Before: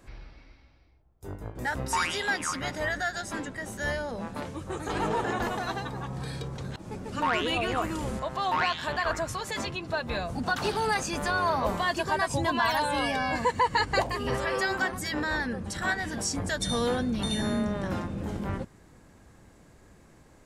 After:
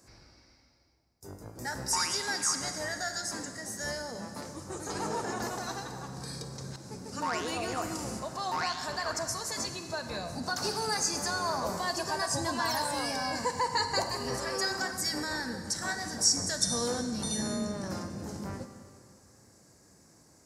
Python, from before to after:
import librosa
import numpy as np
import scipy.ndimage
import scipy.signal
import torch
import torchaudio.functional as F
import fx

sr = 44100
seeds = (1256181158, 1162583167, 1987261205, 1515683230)

y = scipy.signal.sosfilt(scipy.signal.butter(2, 89.0, 'highpass', fs=sr, output='sos'), x)
y = fx.high_shelf_res(y, sr, hz=4100.0, db=8.0, q=3.0)
y = fx.rev_schroeder(y, sr, rt60_s=2.1, comb_ms=33, drr_db=7.5)
y = y * 10.0 ** (-5.5 / 20.0)